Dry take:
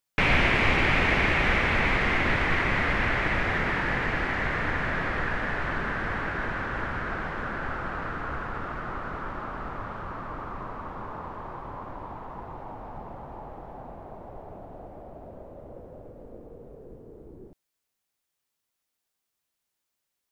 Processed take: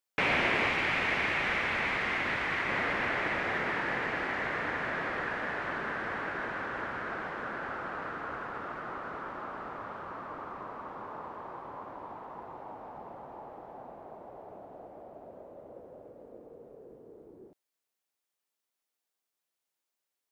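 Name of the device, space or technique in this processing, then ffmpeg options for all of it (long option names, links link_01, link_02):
filter by subtraction: -filter_complex "[0:a]asplit=2[link_01][link_02];[link_02]lowpass=450,volume=-1[link_03];[link_01][link_03]amix=inputs=2:normalize=0,asettb=1/sr,asplit=3[link_04][link_05][link_06];[link_04]atrim=end=0.684[link_07];[link_05]atrim=start=0.68:end=2.69,asetpts=PTS-STARTPTS,afade=type=in:duration=0.004:curve=qsin,afade=type=out:start_time=2.006:duration=0.004:curve=qsin,equalizer=frequency=410:width_type=o:width=2.3:gain=-5[link_08];[link_06]atrim=start=2.686[link_09];[link_07][link_08]acrossfade=duration=0.004:curve1=hsin:curve2=qsin[link_10];[link_10][link_09]acrossfade=duration=0.004:curve1=qsin:curve2=hsin,volume=-5dB"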